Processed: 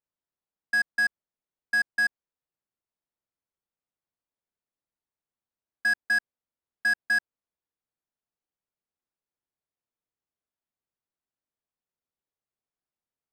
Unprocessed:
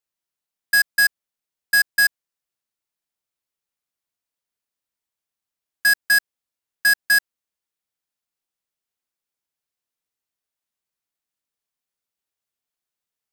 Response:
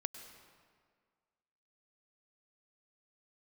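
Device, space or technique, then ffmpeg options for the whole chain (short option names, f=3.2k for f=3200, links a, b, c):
through cloth: -af "lowpass=8.6k,highshelf=f=2k:g=-17"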